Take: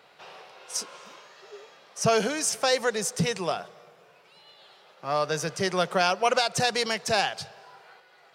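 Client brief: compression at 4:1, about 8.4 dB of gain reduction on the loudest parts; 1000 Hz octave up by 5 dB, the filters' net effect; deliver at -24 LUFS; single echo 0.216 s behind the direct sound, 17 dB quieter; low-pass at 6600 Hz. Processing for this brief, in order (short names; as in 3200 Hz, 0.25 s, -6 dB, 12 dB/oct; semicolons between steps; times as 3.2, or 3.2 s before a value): LPF 6600 Hz; bell 1000 Hz +7.5 dB; compressor 4:1, threshold -24 dBFS; echo 0.216 s -17 dB; gain +5.5 dB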